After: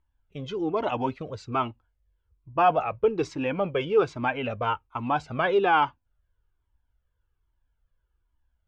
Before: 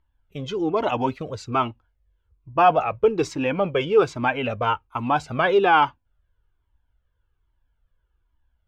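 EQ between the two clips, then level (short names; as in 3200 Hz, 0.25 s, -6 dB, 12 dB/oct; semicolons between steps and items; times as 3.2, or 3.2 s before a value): air absorption 67 m; -4.0 dB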